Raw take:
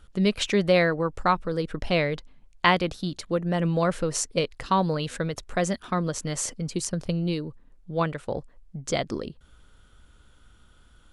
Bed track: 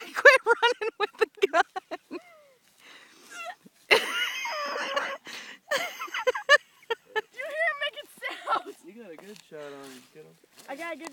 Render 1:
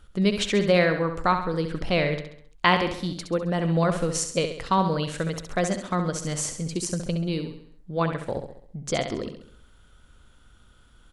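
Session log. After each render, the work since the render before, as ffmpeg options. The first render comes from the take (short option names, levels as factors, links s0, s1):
-af "aecho=1:1:67|134|201|268|335|402:0.398|0.191|0.0917|0.044|0.0211|0.0101"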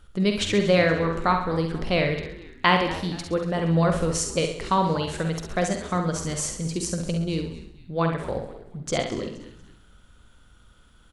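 -filter_complex "[0:a]asplit=2[s0][s1];[s1]adelay=49,volume=0.398[s2];[s0][s2]amix=inputs=2:normalize=0,asplit=4[s3][s4][s5][s6];[s4]adelay=236,afreqshift=-100,volume=0.158[s7];[s5]adelay=472,afreqshift=-200,volume=0.0589[s8];[s6]adelay=708,afreqshift=-300,volume=0.0216[s9];[s3][s7][s8][s9]amix=inputs=4:normalize=0"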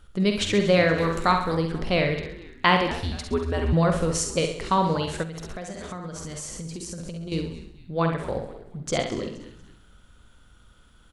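-filter_complex "[0:a]asettb=1/sr,asplit=3[s0][s1][s2];[s0]atrim=end=0.984[s3];[s1]atrim=start=0.98:end=1.55,asetpts=PTS-STARTPTS,afade=t=in:d=0.004:c=qsin,afade=t=out:st=0.566:d=0.004:c=qsin,aemphasis=mode=production:type=75kf[s4];[s2]atrim=start=1.546[s5];[s3][s4]acrossfade=d=0.004:c1=hsin:c2=qsin[s6];[s6][s5]acrossfade=d=0.004:c1=qsin:c2=hsin,asettb=1/sr,asplit=3[s7][s8][s9];[s7]atrim=end=2.914[s10];[s8]atrim=start=2.91:end=3.73,asetpts=PTS-STARTPTS,afade=t=in:d=0.004:c=qsin,afade=t=out:st=0.816:d=0.004:c=qsin,afreqshift=-96[s11];[s9]atrim=start=3.726[s12];[s10][s11]acrossfade=d=0.004:c1=hsin:c2=qsin[s13];[s13][s12]acrossfade=d=0.004:c1=qsin:c2=hsin,asettb=1/sr,asplit=3[s14][s15][s16];[s14]atrim=end=5.234[s17];[s15]atrim=start=5.23:end=7.32,asetpts=PTS-STARTPTS,afade=t=in:d=0.004:c=qsin,afade=t=out:st=2.086:d=0.004:c=qsin,acompressor=threshold=0.0282:ratio=12:attack=3.2:release=140:knee=1:detection=peak[s18];[s16]atrim=start=7.316[s19];[s17][s18]acrossfade=d=0.004:c1=hsin:c2=qsin[s20];[s20][s19]acrossfade=d=0.004:c1=qsin:c2=hsin"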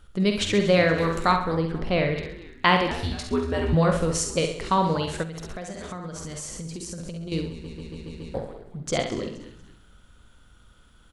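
-filter_complex "[0:a]asettb=1/sr,asplit=3[s0][s1][s2];[s0]atrim=end=1.364[s3];[s1]atrim=start=1.36:end=2.16,asetpts=PTS-STARTPTS,afade=t=in:d=0.004:c=qsin,afade=t=out:st=0.796:d=0.004:c=qsin,highshelf=f=4200:g=-10.5[s4];[s2]atrim=start=2.156[s5];[s3][s4]acrossfade=d=0.004:c1=hsin:c2=qsin[s6];[s6][s5]acrossfade=d=0.004:c1=qsin:c2=hsin,asettb=1/sr,asplit=3[s7][s8][s9];[s7]atrim=end=2.974[s10];[s8]atrim=start=2.97:end=3.97,asetpts=PTS-STARTPTS,afade=t=in:d=0.004:c=qsin,afade=t=out:st=0.996:d=0.004:c=qsin,asplit=2[s11][s12];[s12]adelay=20,volume=0.531[s13];[s11][s13]amix=inputs=2:normalize=0,atrim=end_sample=44100[s14];[s9]atrim=start=3.966[s15];[s10][s14]acrossfade=d=0.004:c1=hsin:c2=qsin[s16];[s16][s15]acrossfade=d=0.004:c1=qsin:c2=hsin,asplit=7[s17][s18][s19][s20][s21][s22][s23];[s17]atrim=end=7.642[s24];[s18]atrim=start=7.498:end=7.642[s25];[s19]atrim=start=7.498:end=7.642[s26];[s20]atrim=start=7.498:end=7.642[s27];[s21]atrim=start=7.498:end=7.642[s28];[s22]atrim=start=7.498:end=7.642[s29];[s23]atrim=start=8.338[s30];[s24][s25]acrossfade=d=0.004:c1=hsin:c2=hsin[s31];[s31][s26]acrossfade=d=0.004:c1=hsin:c2=hsin[s32];[s32][s27]acrossfade=d=0.004:c1=hsin:c2=hsin[s33];[s33][s28]acrossfade=d=0.004:c1=hsin:c2=hsin[s34];[s34][s29]acrossfade=d=0.004:c1=hsin:c2=hsin[s35];[s35][s30]acrossfade=d=0.004:c1=hsin:c2=hsin"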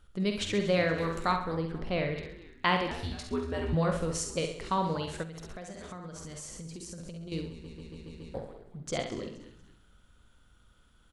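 -af "volume=0.422"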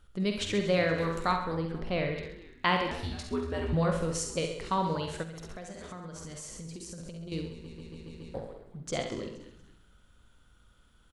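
-af "aecho=1:1:85|132:0.15|0.119"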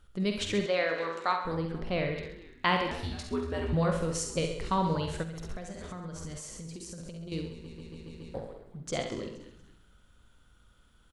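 -filter_complex "[0:a]asettb=1/sr,asplit=3[s0][s1][s2];[s0]atrim=end=0.664[s3];[s1]atrim=start=0.66:end=1.45,asetpts=PTS-STARTPTS,afade=t=in:d=0.004:c=qsin,afade=t=out:st=0.786:d=0.004:c=qsin,highpass=430,lowpass=5400[s4];[s2]atrim=start=1.446[s5];[s3][s4]acrossfade=d=0.004:c1=hsin:c2=qsin[s6];[s6][s5]acrossfade=d=0.004:c1=qsin:c2=hsin,asettb=1/sr,asplit=3[s7][s8][s9];[s7]atrim=end=4.364[s10];[s8]atrim=start=4.36:end=6.38,asetpts=PTS-STARTPTS,afade=t=in:d=0.004:c=qsin,afade=t=out:st=2.016:d=0.004:c=qsin,lowshelf=f=130:g=9[s11];[s9]atrim=start=6.376[s12];[s10][s11]acrossfade=d=0.004:c1=hsin:c2=qsin[s13];[s13][s12]acrossfade=d=0.004:c1=qsin:c2=hsin"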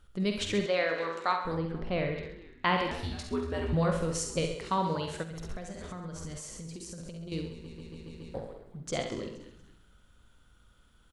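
-filter_complex "[0:a]asettb=1/sr,asplit=3[s0][s1][s2];[s0]atrim=end=1.584[s3];[s1]atrim=start=1.58:end=2.78,asetpts=PTS-STARTPTS,afade=t=in:d=0.004:c=qsin,afade=t=out:st=1.196:d=0.004:c=qsin,lowpass=f=3400:p=1[s4];[s2]atrim=start=2.776[s5];[s3][s4]acrossfade=d=0.004:c1=hsin:c2=qsin[s6];[s6][s5]acrossfade=d=0.004:c1=qsin:c2=hsin,asettb=1/sr,asplit=3[s7][s8][s9];[s7]atrim=end=4.554[s10];[s8]atrim=start=4.55:end=5.31,asetpts=PTS-STARTPTS,afade=t=in:d=0.004:c=qsin,afade=t=out:st=0.756:d=0.004:c=qsin,highpass=f=200:p=1[s11];[s9]atrim=start=5.306[s12];[s10][s11]acrossfade=d=0.004:c1=hsin:c2=qsin[s13];[s13][s12]acrossfade=d=0.004:c1=qsin:c2=hsin"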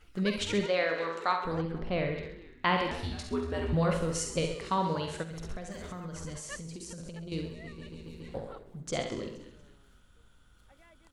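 -filter_complex "[1:a]volume=0.0562[s0];[0:a][s0]amix=inputs=2:normalize=0"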